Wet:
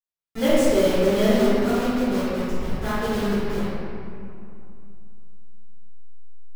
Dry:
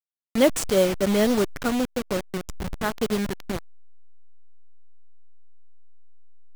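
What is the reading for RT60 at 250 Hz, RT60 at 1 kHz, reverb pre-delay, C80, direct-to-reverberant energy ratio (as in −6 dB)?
3.0 s, 2.6 s, 3 ms, −3.0 dB, −16.0 dB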